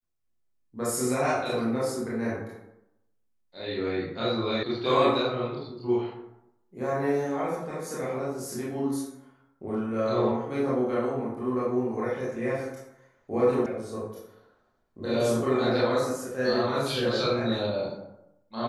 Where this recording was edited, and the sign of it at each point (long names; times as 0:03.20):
0:04.63: cut off before it has died away
0:13.66: cut off before it has died away